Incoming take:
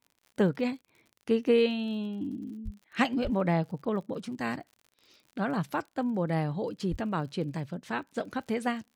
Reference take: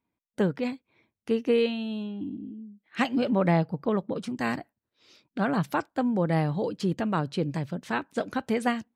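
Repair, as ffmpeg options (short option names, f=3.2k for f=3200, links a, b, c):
-filter_complex "[0:a]adeclick=t=4,asplit=3[a][b][c];[a]afade=t=out:st=2.64:d=0.02[d];[b]highpass=f=140:w=0.5412,highpass=f=140:w=1.3066,afade=t=in:st=2.64:d=0.02,afade=t=out:st=2.76:d=0.02[e];[c]afade=t=in:st=2.76:d=0.02[f];[d][e][f]amix=inputs=3:normalize=0,asplit=3[g][h][i];[g]afade=t=out:st=3.23:d=0.02[j];[h]highpass=f=140:w=0.5412,highpass=f=140:w=1.3066,afade=t=in:st=3.23:d=0.02,afade=t=out:st=3.35:d=0.02[k];[i]afade=t=in:st=3.35:d=0.02[l];[j][k][l]amix=inputs=3:normalize=0,asplit=3[m][n][o];[m]afade=t=out:st=6.9:d=0.02[p];[n]highpass=f=140:w=0.5412,highpass=f=140:w=1.3066,afade=t=in:st=6.9:d=0.02,afade=t=out:st=7.02:d=0.02[q];[o]afade=t=in:st=7.02:d=0.02[r];[p][q][r]amix=inputs=3:normalize=0,asetnsamples=n=441:p=0,asendcmd='3.14 volume volume 4dB',volume=0dB"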